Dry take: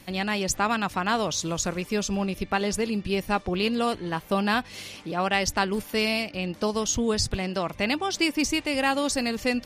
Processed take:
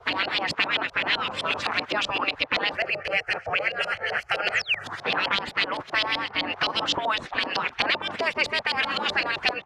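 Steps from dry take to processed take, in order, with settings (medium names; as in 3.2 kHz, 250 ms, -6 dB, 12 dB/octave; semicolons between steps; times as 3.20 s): level rider gain up to 8 dB; waveshaping leveller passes 1; high-pass 220 Hz 12 dB/octave; spectral gate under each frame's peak -15 dB weak; 2.77–4.84 s: static phaser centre 1 kHz, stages 6; 4.52–4.79 s: painted sound fall 1.7–9.2 kHz -30 dBFS; LFO low-pass saw up 7.8 Hz 610–4000 Hz; three bands compressed up and down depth 100%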